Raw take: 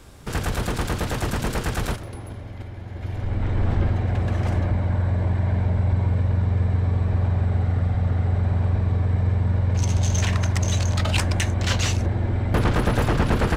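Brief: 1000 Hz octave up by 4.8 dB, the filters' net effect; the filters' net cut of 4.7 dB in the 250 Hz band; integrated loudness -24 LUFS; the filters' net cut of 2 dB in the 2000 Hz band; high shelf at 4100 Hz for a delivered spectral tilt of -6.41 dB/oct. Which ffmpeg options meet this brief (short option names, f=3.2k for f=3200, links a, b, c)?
-af "equalizer=f=250:t=o:g=-7.5,equalizer=f=1k:t=o:g=8,equalizer=f=2k:t=o:g=-4,highshelf=f=4.1k:g=-7.5,volume=-0.5dB"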